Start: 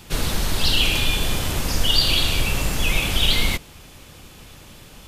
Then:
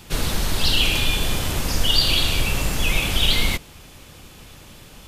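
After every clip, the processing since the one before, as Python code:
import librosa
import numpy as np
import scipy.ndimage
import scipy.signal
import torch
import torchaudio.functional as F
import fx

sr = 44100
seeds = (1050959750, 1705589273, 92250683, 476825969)

y = x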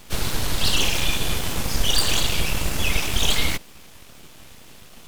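y = np.abs(x)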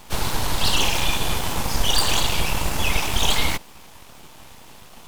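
y = fx.peak_eq(x, sr, hz=900.0, db=8.0, octaves=0.75)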